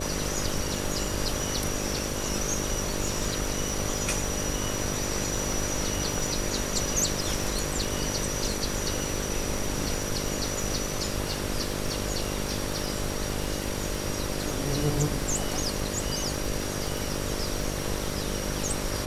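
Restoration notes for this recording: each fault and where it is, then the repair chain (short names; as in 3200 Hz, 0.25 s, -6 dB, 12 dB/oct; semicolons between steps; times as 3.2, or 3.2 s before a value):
buzz 50 Hz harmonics 12 -34 dBFS
crackle 42/s -33 dBFS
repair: de-click; de-hum 50 Hz, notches 12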